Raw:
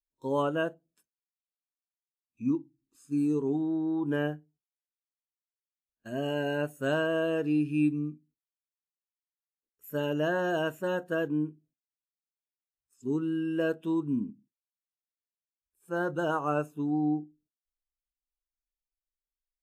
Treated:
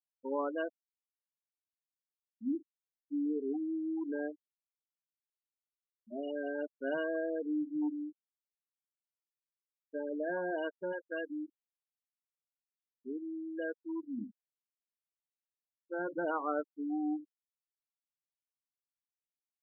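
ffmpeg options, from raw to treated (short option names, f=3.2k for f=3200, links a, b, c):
-filter_complex "[0:a]asettb=1/sr,asplit=3[a][b][c];[a]atrim=end=4.044[d];[b]atrim=start=4.04:end=6.42,asetpts=PTS-STARTPTS,afade=t=in:d=0.004:c=qsin,afade=t=out:st=2.376:d=0.004:c=qsin,aeval=exprs='clip(val(0),-1,0.0398)':c=same[e];[c]atrim=start=6.416[f];[d][e]acrossfade=d=0.004:c1=hsin:c2=qsin[g];[g][f]acrossfade=d=0.004:c1=qsin:c2=hsin,asettb=1/sr,asplit=3[h][i][j];[h]atrim=end=7.204[k];[i]atrim=start=7.2:end=10.36,asetpts=PTS-STARTPTS,afade=t=in:d=0.004:c=qsin,afade=t=out:st=3.156:d=0.004:c=qsin,volume=23dB,asoftclip=hard,volume=-23dB[l];[j]atrim=start=10.356[m];[k][l]acrossfade=d=0.004:c1=hsin:c2=qsin[n];[n][m]acrossfade=d=0.004:c1=qsin:c2=hsin,asettb=1/sr,asplit=3[o][p][q];[o]atrim=end=10.924[r];[p]atrim=start=10.92:end=14.18,asetpts=PTS-STARTPTS,afade=t=in:d=0.004:c=qsin,afade=t=out:st=3.256:d=0.004:c=qsin,tiltshelf=f=1.2k:g=-4.5[s];[q]atrim=start=14.176[t];[r][s]acrossfade=d=0.004:c1=hsin:c2=qsin[u];[u][t]acrossfade=d=0.004:c1=qsin:c2=hsin,asettb=1/sr,asplit=3[v][w][x];[v]atrim=end=16.104[y];[w]atrim=start=16.1:end=16.61,asetpts=PTS-STARTPTS,afade=t=in:d=0.004:c=qsin,afade=t=out:st=0.506:d=0.004:c=qsin,aeval=exprs='val(0)+0.5*0.02*sgn(val(0))':c=same[z];[x]atrim=start=16.606[aa];[y][z]acrossfade=d=0.004:c1=hsin:c2=qsin[ab];[ab][aa]acrossfade=d=0.004:c1=qsin:c2=hsin,highpass=f=200:w=0.5412,highpass=f=200:w=1.3066,afftfilt=real='re*gte(hypot(re,im),0.0631)':imag='im*gte(hypot(re,im),0.0631)':win_size=1024:overlap=0.75,volume=-6dB"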